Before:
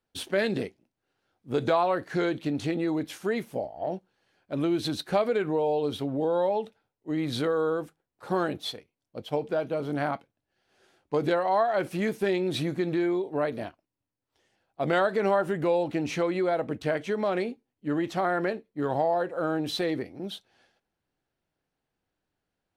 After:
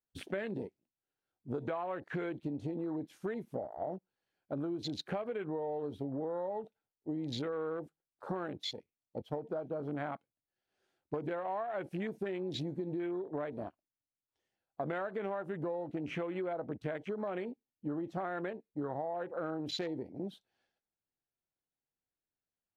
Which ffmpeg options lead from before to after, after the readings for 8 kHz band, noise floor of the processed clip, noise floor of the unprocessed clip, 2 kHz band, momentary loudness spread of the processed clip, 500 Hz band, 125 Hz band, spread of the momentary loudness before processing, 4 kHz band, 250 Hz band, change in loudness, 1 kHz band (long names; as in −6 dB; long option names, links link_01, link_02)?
below −10 dB, below −85 dBFS, −85 dBFS, −12.0 dB, 6 LU, −11.0 dB, −8.0 dB, 10 LU, −9.0 dB, −9.5 dB, −10.5 dB, −12.0 dB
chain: -af "afwtdn=0.0141,acompressor=threshold=-35dB:ratio=6"